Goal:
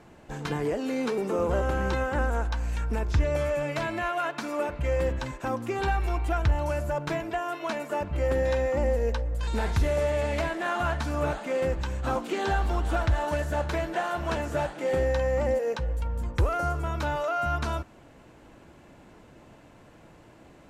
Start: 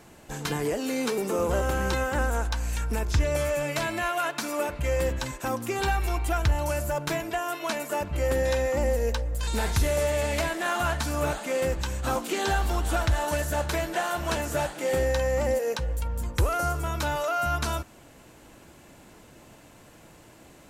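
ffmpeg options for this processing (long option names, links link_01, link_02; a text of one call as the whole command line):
ffmpeg -i in.wav -af "aemphasis=mode=reproduction:type=75kf" out.wav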